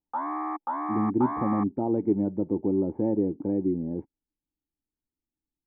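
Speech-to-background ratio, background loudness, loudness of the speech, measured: 4.5 dB, −32.0 LKFS, −27.5 LKFS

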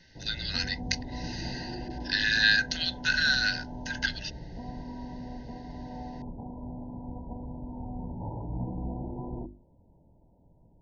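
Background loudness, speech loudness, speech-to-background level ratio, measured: −39.5 LKFS, −27.5 LKFS, 12.0 dB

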